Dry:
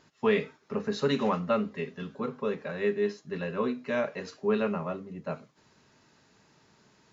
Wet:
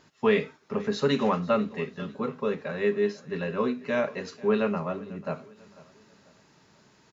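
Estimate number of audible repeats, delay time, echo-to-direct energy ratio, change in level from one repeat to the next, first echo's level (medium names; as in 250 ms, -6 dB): 2, 493 ms, -20.0 dB, -8.0 dB, -20.5 dB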